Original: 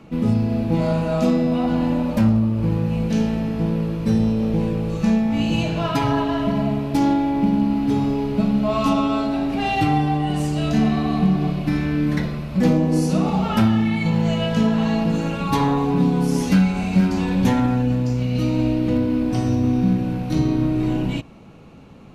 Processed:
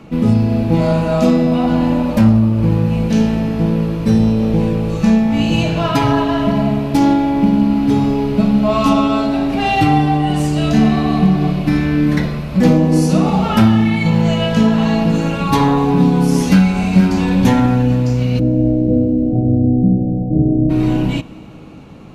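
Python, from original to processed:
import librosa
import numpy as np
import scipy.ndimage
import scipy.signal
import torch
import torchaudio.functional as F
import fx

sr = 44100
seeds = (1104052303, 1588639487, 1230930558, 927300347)

y = fx.steep_lowpass(x, sr, hz=710.0, slope=72, at=(18.38, 20.69), fade=0.02)
y = fx.rev_plate(y, sr, seeds[0], rt60_s=3.8, hf_ratio=1.0, predelay_ms=0, drr_db=19.0)
y = F.gain(torch.from_numpy(y), 6.0).numpy()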